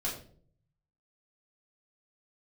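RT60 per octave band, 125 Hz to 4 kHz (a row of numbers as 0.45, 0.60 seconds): 1.2, 0.70, 0.60, 0.45, 0.35, 0.35 seconds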